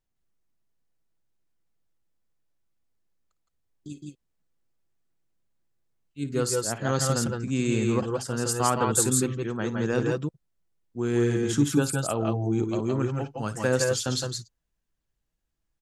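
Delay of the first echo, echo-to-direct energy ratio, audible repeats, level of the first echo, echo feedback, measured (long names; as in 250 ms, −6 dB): 55 ms, −2.0 dB, 2, −15.0 dB, repeats not evenly spaced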